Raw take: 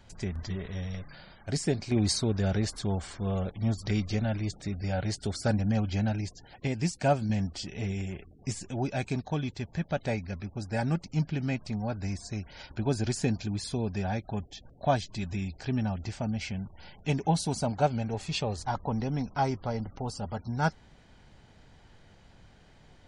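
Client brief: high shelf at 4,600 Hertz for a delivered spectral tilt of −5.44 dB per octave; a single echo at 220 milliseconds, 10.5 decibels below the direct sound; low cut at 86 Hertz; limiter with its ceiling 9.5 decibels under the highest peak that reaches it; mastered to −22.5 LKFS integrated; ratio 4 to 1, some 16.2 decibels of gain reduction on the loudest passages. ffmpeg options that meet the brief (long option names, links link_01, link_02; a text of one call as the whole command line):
ffmpeg -i in.wav -af "highpass=86,highshelf=frequency=4600:gain=-3.5,acompressor=threshold=-40dB:ratio=4,alimiter=level_in=11.5dB:limit=-24dB:level=0:latency=1,volume=-11.5dB,aecho=1:1:220:0.299,volume=23dB" out.wav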